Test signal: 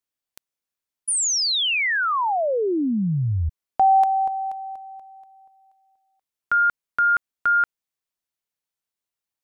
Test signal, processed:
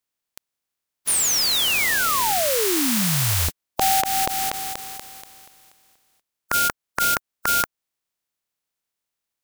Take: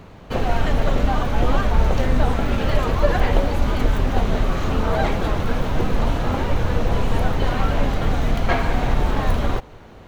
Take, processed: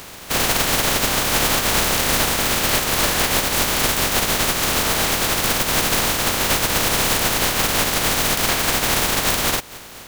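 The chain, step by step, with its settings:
compressing power law on the bin magnitudes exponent 0.26
downward compressor 3 to 1, threshold −22 dBFS
hard clipping −15 dBFS
level +4.5 dB

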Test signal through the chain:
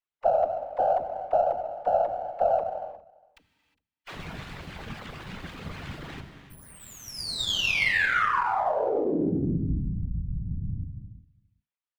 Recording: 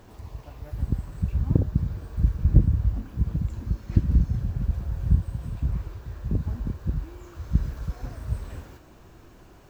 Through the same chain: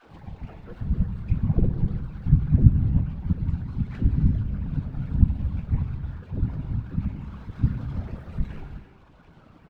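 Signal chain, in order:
spectral magnitudes quantised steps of 15 dB
reverb reduction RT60 2 s
high-shelf EQ 2,100 Hz +11 dB
all-pass dispersion lows, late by 80 ms, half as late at 380 Hz
frequency shifter −140 Hz
random phases in short frames
high-frequency loss of the air 420 metres
on a send: single-tap delay 407 ms −24 dB
on the sum: reverb whose tail is shaped and stops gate 380 ms flat, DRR 6.5 dB
windowed peak hold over 3 samples
level +3.5 dB

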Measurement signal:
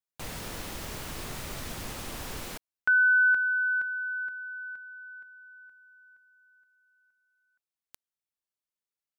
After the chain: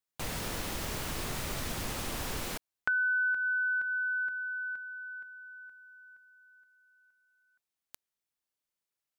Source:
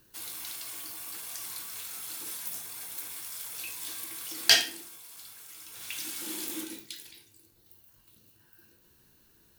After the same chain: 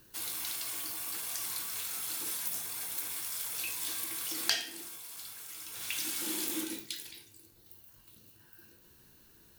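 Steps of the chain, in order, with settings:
downward compressor 4 to 1, threshold −32 dBFS
level +2.5 dB

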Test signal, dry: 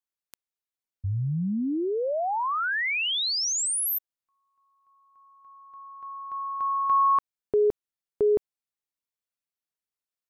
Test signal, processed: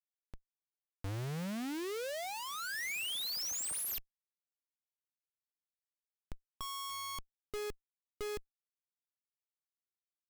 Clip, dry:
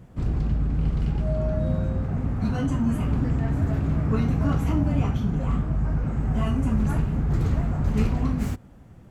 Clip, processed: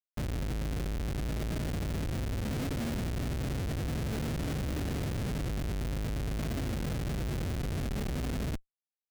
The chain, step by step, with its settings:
tube saturation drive 17 dB, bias 0.7
comparator with hysteresis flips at −33 dBFS
dynamic equaliser 1,000 Hz, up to −6 dB, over −44 dBFS, Q 1.5
level −5 dB

